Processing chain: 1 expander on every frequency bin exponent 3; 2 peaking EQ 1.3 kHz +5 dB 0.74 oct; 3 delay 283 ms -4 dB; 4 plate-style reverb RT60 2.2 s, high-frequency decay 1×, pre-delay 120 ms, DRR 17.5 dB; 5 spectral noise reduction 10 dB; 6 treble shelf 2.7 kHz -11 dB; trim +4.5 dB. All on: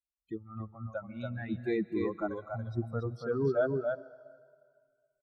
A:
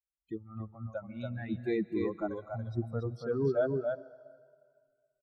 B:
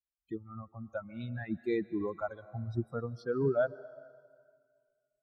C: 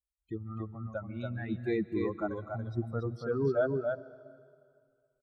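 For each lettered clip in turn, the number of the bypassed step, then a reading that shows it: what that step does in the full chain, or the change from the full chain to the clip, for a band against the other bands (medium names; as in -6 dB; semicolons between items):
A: 2, 2 kHz band -3.0 dB; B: 3, momentary loudness spread change +2 LU; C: 5, momentary loudness spread change -2 LU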